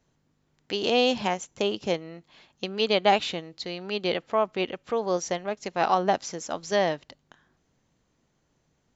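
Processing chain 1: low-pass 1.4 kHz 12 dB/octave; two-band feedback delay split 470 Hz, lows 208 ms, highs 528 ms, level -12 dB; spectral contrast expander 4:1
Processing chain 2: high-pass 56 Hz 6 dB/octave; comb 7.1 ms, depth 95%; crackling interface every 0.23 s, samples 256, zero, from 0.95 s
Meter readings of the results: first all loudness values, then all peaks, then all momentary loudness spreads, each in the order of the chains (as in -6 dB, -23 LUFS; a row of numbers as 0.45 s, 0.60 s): -32.5 LUFS, -25.0 LUFS; -10.5 dBFS, -7.0 dBFS; 23 LU, 11 LU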